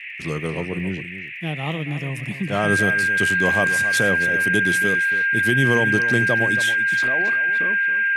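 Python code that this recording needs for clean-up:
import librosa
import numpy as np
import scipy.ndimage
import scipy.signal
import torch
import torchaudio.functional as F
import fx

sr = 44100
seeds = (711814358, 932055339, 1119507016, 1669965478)

y = fx.fix_declick_ar(x, sr, threshold=6.5)
y = fx.notch(y, sr, hz=1600.0, q=30.0)
y = fx.noise_reduce(y, sr, print_start_s=0.94, print_end_s=1.44, reduce_db=30.0)
y = fx.fix_echo_inverse(y, sr, delay_ms=275, level_db=-12.5)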